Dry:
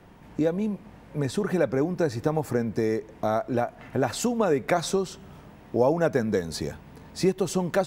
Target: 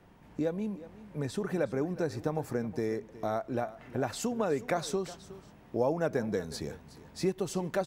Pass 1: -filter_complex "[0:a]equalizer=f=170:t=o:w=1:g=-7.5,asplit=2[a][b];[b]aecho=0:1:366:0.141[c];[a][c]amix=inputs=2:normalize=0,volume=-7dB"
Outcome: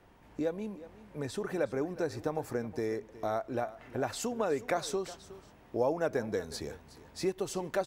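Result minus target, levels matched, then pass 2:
125 Hz band -4.0 dB
-filter_complex "[0:a]asplit=2[a][b];[b]aecho=0:1:366:0.141[c];[a][c]amix=inputs=2:normalize=0,volume=-7dB"

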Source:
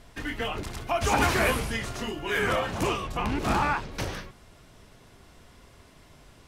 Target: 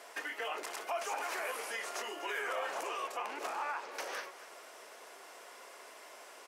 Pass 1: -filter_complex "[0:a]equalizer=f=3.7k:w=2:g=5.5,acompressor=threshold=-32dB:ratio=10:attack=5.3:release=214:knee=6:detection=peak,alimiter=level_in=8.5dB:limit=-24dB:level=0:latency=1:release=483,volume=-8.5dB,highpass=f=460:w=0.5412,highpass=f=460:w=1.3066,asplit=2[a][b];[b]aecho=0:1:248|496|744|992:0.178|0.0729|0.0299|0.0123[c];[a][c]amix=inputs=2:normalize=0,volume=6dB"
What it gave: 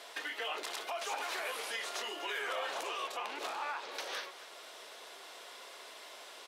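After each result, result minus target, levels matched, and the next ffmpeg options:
4000 Hz band +7.0 dB; compressor: peak gain reduction +6.5 dB
-filter_complex "[0:a]equalizer=f=3.7k:w=2:g=-6,acompressor=threshold=-32dB:ratio=10:attack=5.3:release=214:knee=6:detection=peak,alimiter=level_in=8.5dB:limit=-24dB:level=0:latency=1:release=483,volume=-8.5dB,highpass=f=460:w=0.5412,highpass=f=460:w=1.3066,asplit=2[a][b];[b]aecho=0:1:248|496|744|992:0.178|0.0729|0.0299|0.0123[c];[a][c]amix=inputs=2:normalize=0,volume=6dB"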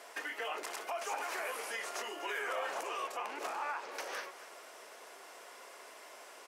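compressor: peak gain reduction +6 dB
-filter_complex "[0:a]equalizer=f=3.7k:w=2:g=-6,acompressor=threshold=-25.5dB:ratio=10:attack=5.3:release=214:knee=6:detection=peak,alimiter=level_in=8.5dB:limit=-24dB:level=0:latency=1:release=483,volume=-8.5dB,highpass=f=460:w=0.5412,highpass=f=460:w=1.3066,asplit=2[a][b];[b]aecho=0:1:248|496|744|992:0.178|0.0729|0.0299|0.0123[c];[a][c]amix=inputs=2:normalize=0,volume=6dB"

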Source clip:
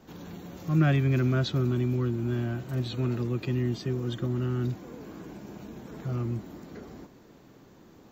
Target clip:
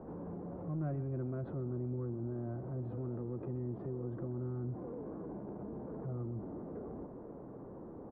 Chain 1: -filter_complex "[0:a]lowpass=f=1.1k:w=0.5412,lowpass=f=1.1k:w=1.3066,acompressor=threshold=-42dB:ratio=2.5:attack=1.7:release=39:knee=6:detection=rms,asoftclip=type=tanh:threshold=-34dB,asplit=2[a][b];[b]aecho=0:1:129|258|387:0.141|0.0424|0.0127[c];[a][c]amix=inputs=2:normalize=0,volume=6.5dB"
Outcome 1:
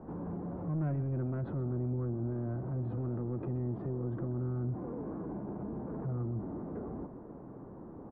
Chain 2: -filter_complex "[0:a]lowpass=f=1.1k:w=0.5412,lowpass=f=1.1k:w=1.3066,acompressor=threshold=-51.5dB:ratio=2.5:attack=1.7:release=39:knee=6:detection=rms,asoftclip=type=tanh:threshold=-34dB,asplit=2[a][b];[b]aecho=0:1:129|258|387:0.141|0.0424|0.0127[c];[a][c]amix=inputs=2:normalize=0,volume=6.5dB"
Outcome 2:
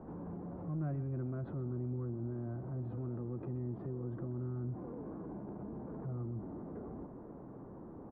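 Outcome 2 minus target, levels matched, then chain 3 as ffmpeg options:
500 Hz band -2.5 dB
-filter_complex "[0:a]lowpass=f=1.1k:w=0.5412,lowpass=f=1.1k:w=1.3066,equalizer=f=490:w=1.7:g=5.5,acompressor=threshold=-51.5dB:ratio=2.5:attack=1.7:release=39:knee=6:detection=rms,asoftclip=type=tanh:threshold=-34dB,asplit=2[a][b];[b]aecho=0:1:129|258|387:0.141|0.0424|0.0127[c];[a][c]amix=inputs=2:normalize=0,volume=6.5dB"

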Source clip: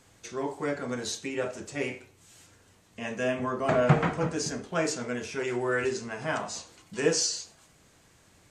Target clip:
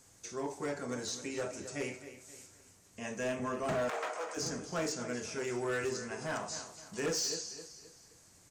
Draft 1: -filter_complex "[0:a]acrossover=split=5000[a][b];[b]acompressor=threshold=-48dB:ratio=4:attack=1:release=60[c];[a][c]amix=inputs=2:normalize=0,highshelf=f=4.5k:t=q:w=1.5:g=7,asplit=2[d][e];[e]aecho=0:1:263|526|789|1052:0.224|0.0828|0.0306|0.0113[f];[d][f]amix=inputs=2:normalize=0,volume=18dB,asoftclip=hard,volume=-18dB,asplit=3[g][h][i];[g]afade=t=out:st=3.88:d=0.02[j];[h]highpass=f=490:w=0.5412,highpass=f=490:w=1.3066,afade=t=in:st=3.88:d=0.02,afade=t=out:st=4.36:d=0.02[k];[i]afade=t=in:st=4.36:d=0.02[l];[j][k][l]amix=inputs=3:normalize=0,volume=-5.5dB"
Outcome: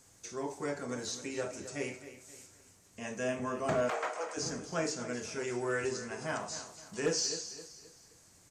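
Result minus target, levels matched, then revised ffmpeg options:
overloaded stage: distortion -6 dB
-filter_complex "[0:a]acrossover=split=5000[a][b];[b]acompressor=threshold=-48dB:ratio=4:attack=1:release=60[c];[a][c]amix=inputs=2:normalize=0,highshelf=f=4.5k:t=q:w=1.5:g=7,asplit=2[d][e];[e]aecho=0:1:263|526|789|1052:0.224|0.0828|0.0306|0.0113[f];[d][f]amix=inputs=2:normalize=0,volume=24dB,asoftclip=hard,volume=-24dB,asplit=3[g][h][i];[g]afade=t=out:st=3.88:d=0.02[j];[h]highpass=f=490:w=0.5412,highpass=f=490:w=1.3066,afade=t=in:st=3.88:d=0.02,afade=t=out:st=4.36:d=0.02[k];[i]afade=t=in:st=4.36:d=0.02[l];[j][k][l]amix=inputs=3:normalize=0,volume=-5.5dB"

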